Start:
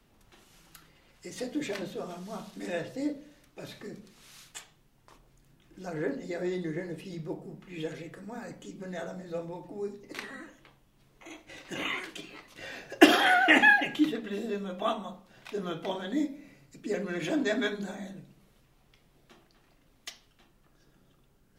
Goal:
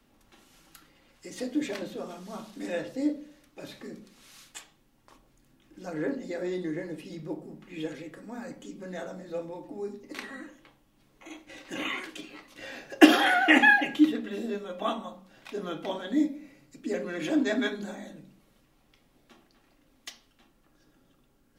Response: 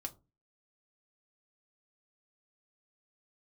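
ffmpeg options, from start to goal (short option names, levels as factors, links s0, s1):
-filter_complex "[0:a]asplit=2[s0][s1];[s1]lowshelf=f=130:t=q:w=3:g=-13.5[s2];[1:a]atrim=start_sample=2205[s3];[s2][s3]afir=irnorm=-1:irlink=0,volume=0.75[s4];[s0][s4]amix=inputs=2:normalize=0,volume=0.668"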